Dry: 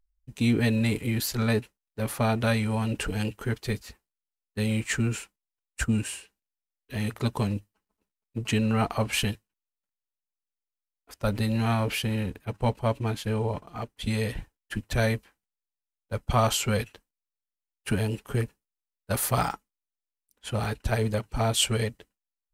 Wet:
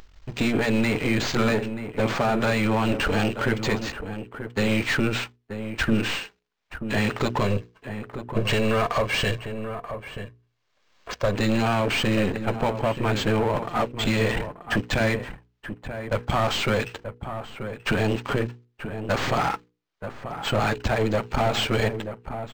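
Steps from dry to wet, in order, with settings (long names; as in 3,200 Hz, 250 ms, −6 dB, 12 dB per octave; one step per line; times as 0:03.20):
gain on one half-wave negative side −12 dB
0:07.41–0:11.35: comb filter 1.8 ms, depth 55%
downward compressor, threshold −30 dBFS, peak gain reduction 11.5 dB
mid-hump overdrive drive 22 dB, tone 4,500 Hz, clips at −21.5 dBFS
mains-hum notches 60/120/180/240/300/360/420/480 Hz
slap from a distant wall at 160 metres, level −9 dB
upward compression, threshold −45 dBFS
low-shelf EQ 220 Hz +7.5 dB
linearly interpolated sample-rate reduction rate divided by 4×
level +7 dB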